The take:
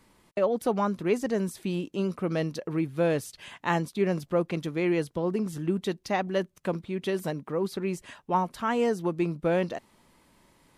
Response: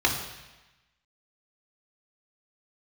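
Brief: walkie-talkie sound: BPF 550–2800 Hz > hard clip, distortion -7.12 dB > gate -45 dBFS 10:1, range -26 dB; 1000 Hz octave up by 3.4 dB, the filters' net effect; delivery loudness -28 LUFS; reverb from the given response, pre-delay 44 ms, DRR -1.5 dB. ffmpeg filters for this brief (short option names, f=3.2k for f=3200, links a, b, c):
-filter_complex "[0:a]equalizer=f=1k:t=o:g=5,asplit=2[a][b];[1:a]atrim=start_sample=2205,adelay=44[c];[b][c]afir=irnorm=-1:irlink=0,volume=-13dB[d];[a][d]amix=inputs=2:normalize=0,highpass=550,lowpass=2.8k,asoftclip=type=hard:threshold=-26dB,agate=range=-26dB:threshold=-45dB:ratio=10,volume=4dB"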